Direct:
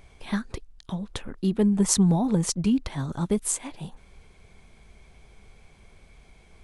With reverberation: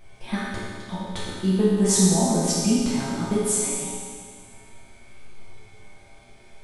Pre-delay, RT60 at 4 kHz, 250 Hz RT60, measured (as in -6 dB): 3 ms, 2.0 s, 2.0 s